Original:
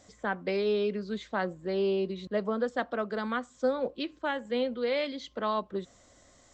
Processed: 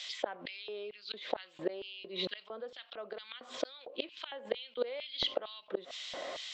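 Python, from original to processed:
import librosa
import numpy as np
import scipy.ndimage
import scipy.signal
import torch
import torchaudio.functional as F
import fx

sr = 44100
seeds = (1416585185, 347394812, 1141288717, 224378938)

y = fx.gate_flip(x, sr, shuts_db=-26.0, range_db=-33)
y = fx.high_shelf_res(y, sr, hz=2200.0, db=7.5, q=1.5)
y = fx.filter_lfo_highpass(y, sr, shape='square', hz=2.2, low_hz=550.0, high_hz=3100.0, q=1.4)
y = fx.air_absorb(y, sr, metres=370.0)
y = fx.env_flatten(y, sr, amount_pct=50)
y = F.gain(torch.from_numpy(y), 9.5).numpy()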